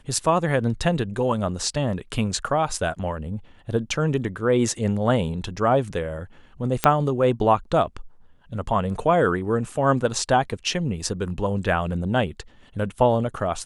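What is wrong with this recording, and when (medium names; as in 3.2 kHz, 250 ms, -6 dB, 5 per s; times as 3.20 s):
6.84 s: pop -2 dBFS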